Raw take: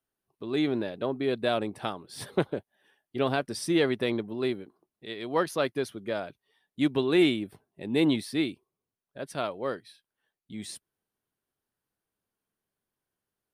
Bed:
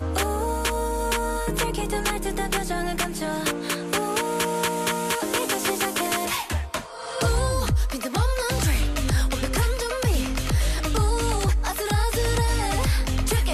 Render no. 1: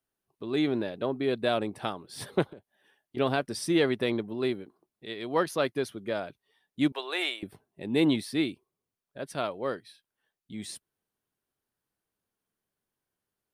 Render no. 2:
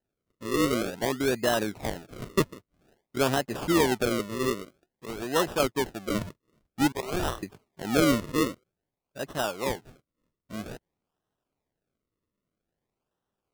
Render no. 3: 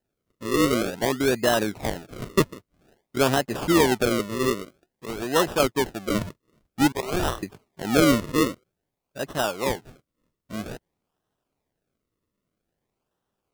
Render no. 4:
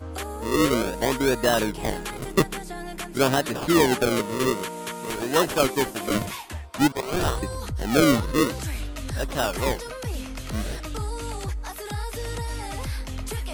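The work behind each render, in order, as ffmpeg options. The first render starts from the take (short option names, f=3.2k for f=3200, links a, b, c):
-filter_complex "[0:a]asettb=1/sr,asplit=3[a][b][c];[a]atrim=end=2.494[d];[b]atrim=start=2.49:end=3.17,asetpts=PTS-STARTPTS,afade=t=in:d=0.004:c=qsin,afade=t=out:st=0.676:d=0.004:c=qsin,acompressor=threshold=-41dB:ratio=16:attack=3.2:release=140:knee=1:detection=peak[e];[c]atrim=start=3.166[f];[d][e]acrossfade=d=0.004:c1=hsin:c2=qsin[g];[g][f]acrossfade=d=0.004:c1=qsin:c2=hsin,asettb=1/sr,asplit=3[h][i][j];[h]atrim=end=6.924[k];[i]atrim=start=6.92:end=7.43,asetpts=PTS-STARTPTS,afade=t=in:d=0.004:c=qsin,afade=t=out:st=0.506:d=0.004:c=qsin,highpass=f=570:w=0.5412,highpass=f=570:w=1.3066[l];[j]atrim=start=7.426[m];[k][l]acrossfade=d=0.004:c1=hsin:c2=qsin[n];[n][m]acrossfade=d=0.004:c1=qsin:c2=hsin"
-filter_complex "[0:a]asplit=2[a][b];[b]volume=24.5dB,asoftclip=hard,volume=-24.5dB,volume=-10.5dB[c];[a][c]amix=inputs=2:normalize=0,acrusher=samples=38:mix=1:aa=0.000001:lfo=1:lforange=38:lforate=0.51"
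-af "volume=4dB"
-filter_complex "[1:a]volume=-8.5dB[a];[0:a][a]amix=inputs=2:normalize=0"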